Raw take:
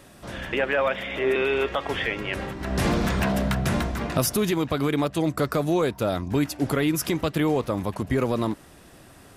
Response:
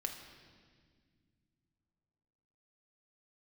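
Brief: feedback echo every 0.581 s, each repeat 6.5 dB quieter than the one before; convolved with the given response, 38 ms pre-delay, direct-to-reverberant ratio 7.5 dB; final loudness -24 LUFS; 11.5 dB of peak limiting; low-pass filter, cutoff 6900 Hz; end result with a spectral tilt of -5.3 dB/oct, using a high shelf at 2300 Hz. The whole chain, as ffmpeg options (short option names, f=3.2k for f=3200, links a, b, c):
-filter_complex "[0:a]lowpass=6.9k,highshelf=f=2.3k:g=-3.5,alimiter=limit=-21dB:level=0:latency=1,aecho=1:1:581|1162|1743|2324|2905|3486:0.473|0.222|0.105|0.0491|0.0231|0.0109,asplit=2[a][b];[1:a]atrim=start_sample=2205,adelay=38[c];[b][c]afir=irnorm=-1:irlink=0,volume=-7.5dB[d];[a][d]amix=inputs=2:normalize=0,volume=5dB"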